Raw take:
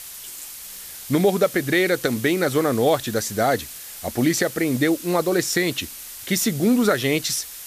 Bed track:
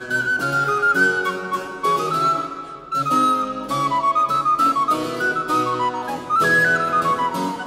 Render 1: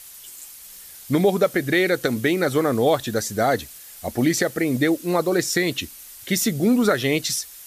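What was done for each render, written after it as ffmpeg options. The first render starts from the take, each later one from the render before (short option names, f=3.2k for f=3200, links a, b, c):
-af "afftdn=nr=7:nf=-38"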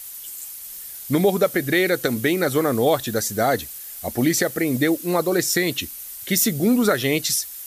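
-af "highshelf=f=11k:g=11.5"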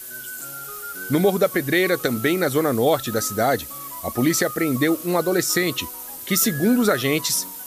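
-filter_complex "[1:a]volume=-19dB[a];[0:a][a]amix=inputs=2:normalize=0"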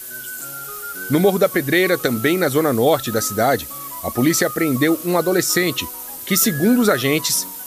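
-af "volume=3dB"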